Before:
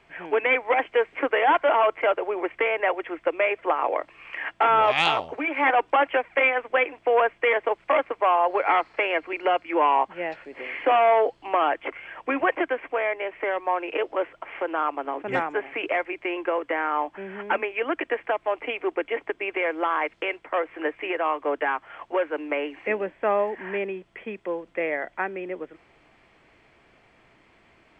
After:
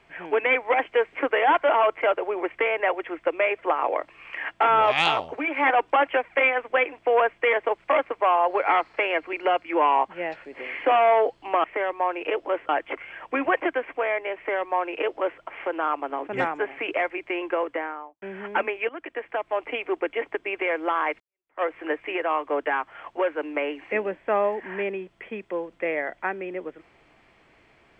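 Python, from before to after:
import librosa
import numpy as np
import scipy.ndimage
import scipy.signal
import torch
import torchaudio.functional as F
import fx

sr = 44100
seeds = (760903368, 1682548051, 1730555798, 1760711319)

y = fx.studio_fade_out(x, sr, start_s=16.56, length_s=0.61)
y = fx.edit(y, sr, fx.duplicate(start_s=13.31, length_s=1.05, to_s=11.64),
    fx.fade_in_from(start_s=17.84, length_s=0.74, floor_db=-14.0),
    fx.fade_in_span(start_s=20.15, length_s=0.42, curve='exp'), tone=tone)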